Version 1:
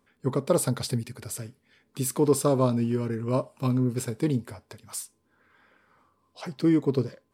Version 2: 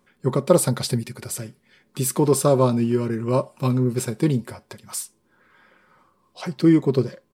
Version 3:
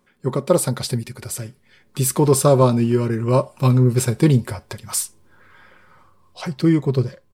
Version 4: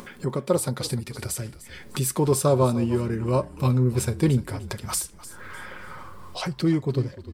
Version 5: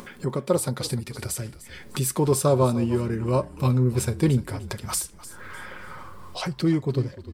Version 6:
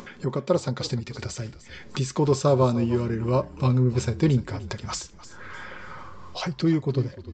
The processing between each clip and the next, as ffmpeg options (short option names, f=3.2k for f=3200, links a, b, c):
-af "aecho=1:1:5.5:0.4,volume=5dB"
-af "dynaudnorm=f=210:g=11:m=11.5dB,asubboost=boost=6.5:cutoff=95"
-filter_complex "[0:a]acompressor=mode=upward:threshold=-17dB:ratio=2.5,asplit=4[a][b][c][d];[b]adelay=301,afreqshift=-41,volume=-16dB[e];[c]adelay=602,afreqshift=-82,volume=-26.2dB[f];[d]adelay=903,afreqshift=-123,volume=-36.3dB[g];[a][e][f][g]amix=inputs=4:normalize=0,volume=-6dB"
-af anull
-af "aresample=16000,aresample=44100"